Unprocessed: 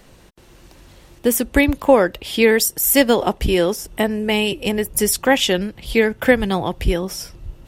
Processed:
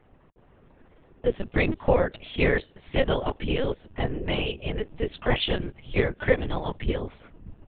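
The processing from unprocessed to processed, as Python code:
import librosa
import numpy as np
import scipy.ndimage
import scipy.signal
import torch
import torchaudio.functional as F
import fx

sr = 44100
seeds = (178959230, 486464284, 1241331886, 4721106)

y = fx.env_lowpass(x, sr, base_hz=1500.0, full_db=-12.0)
y = fx.whisperise(y, sr, seeds[0])
y = fx.lpc_vocoder(y, sr, seeds[1], excitation='pitch_kept', order=10)
y = y * librosa.db_to_amplitude(-8.0)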